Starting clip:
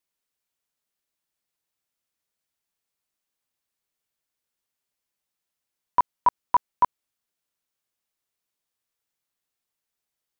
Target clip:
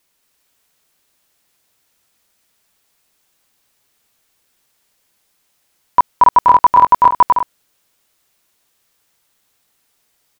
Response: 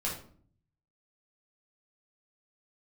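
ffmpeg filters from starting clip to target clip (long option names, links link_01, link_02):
-af "aecho=1:1:230|379.5|476.7|539.8|580.9:0.631|0.398|0.251|0.158|0.1,alimiter=level_in=19.5dB:limit=-1dB:release=50:level=0:latency=1,volume=-1dB"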